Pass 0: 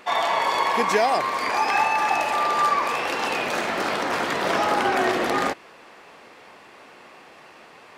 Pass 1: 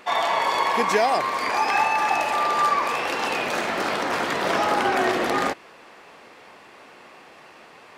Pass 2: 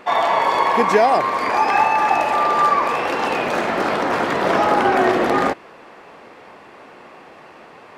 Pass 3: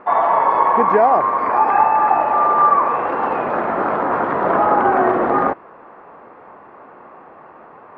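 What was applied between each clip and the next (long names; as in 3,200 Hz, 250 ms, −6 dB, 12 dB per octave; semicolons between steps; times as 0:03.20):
no processing that can be heard
high-shelf EQ 2,200 Hz −10.5 dB; level +7 dB
low-pass with resonance 1,200 Hz, resonance Q 1.6; level −1 dB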